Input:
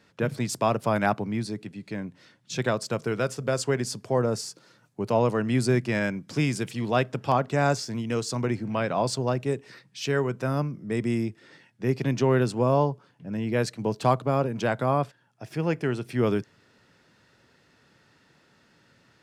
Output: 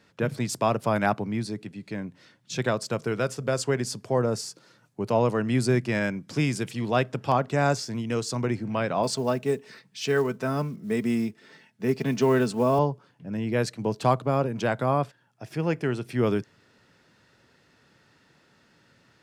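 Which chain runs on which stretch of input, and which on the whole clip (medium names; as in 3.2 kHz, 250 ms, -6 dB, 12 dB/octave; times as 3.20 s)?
9.03–12.79 s: high-pass 59 Hz 6 dB/octave + comb 4.6 ms, depth 48% + short-mantissa float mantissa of 4-bit
whole clip: none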